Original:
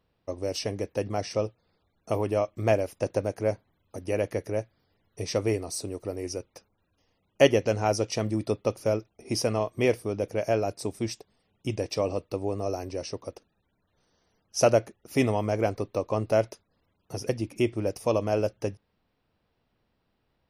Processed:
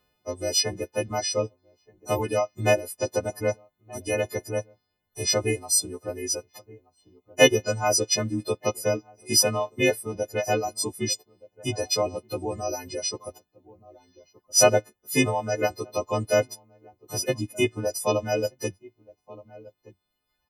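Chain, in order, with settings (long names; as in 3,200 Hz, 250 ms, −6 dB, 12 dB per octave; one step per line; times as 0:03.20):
every partial snapped to a pitch grid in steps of 3 semitones
slap from a distant wall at 210 metres, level −19 dB
reverb reduction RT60 1.4 s
level +2 dB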